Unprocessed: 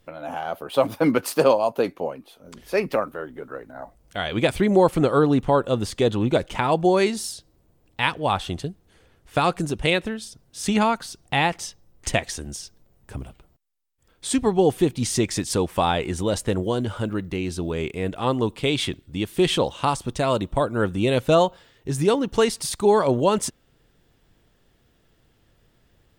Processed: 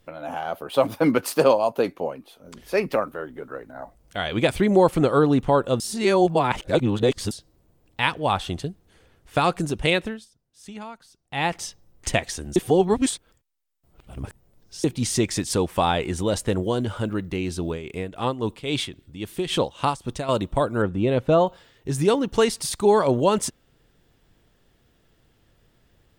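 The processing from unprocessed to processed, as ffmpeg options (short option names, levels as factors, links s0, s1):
-filter_complex "[0:a]asettb=1/sr,asplit=3[s0][s1][s2];[s0]atrim=end=17.694[s3];[s1]atrim=start=17.69:end=20.29,asetpts=PTS-STARTPTS,afade=t=in:d=0.004:c=qsin,afade=t=out:st=2.596:d=0.004:c=qsin,tremolo=f=3.7:d=0.69[s4];[s2]atrim=start=20.286[s5];[s3][s4]acrossfade=d=0.004:c1=hsin:c2=qsin[s6];[s6][s5]acrossfade=d=0.004:c1=qsin:c2=hsin,asettb=1/sr,asplit=3[s7][s8][s9];[s7]atrim=end=20.824[s10];[s8]atrim=start=20.82:end=21.47,asetpts=PTS-STARTPTS,afade=t=in:d=0.004:c=qsin,afade=t=out:st=0.646:d=0.004:c=qsin,lowpass=f=1300:p=1[s11];[s9]atrim=start=21.466[s12];[s10][s11]acrossfade=d=0.004:c1=hsin:c2=qsin[s13];[s13][s12]acrossfade=d=0.004:c1=qsin:c2=hsin,asplit=7[s14][s15][s16][s17][s18][s19][s20];[s14]atrim=end=5.802[s21];[s15]atrim=start=5.798:end=7.312,asetpts=PTS-STARTPTS,areverse[s22];[s16]atrim=start=7.308:end=10.26,asetpts=PTS-STARTPTS,afade=t=out:st=2.662:d=0.29:c=qsin:silence=0.133352[s23];[s17]atrim=start=10.26:end=11.3,asetpts=PTS-STARTPTS,volume=0.133[s24];[s18]atrim=start=11.3:end=12.562,asetpts=PTS-STARTPTS,afade=t=in:d=0.29:c=qsin:silence=0.133352[s25];[s19]atrim=start=12.558:end=14.842,asetpts=PTS-STARTPTS,areverse[s26];[s20]atrim=start=14.838[s27];[s21][s22]acrossfade=d=0.004:c1=hsin:c2=hsin[s28];[s23][s24][s25]concat=n=3:v=0:a=1[s29];[s28][s29]acrossfade=d=0.004:c1=hsin:c2=hsin[s30];[s30][s26]acrossfade=d=0.004:c1=hsin:c2=hsin[s31];[s31][s27]acrossfade=d=0.004:c1=hsin:c2=hsin"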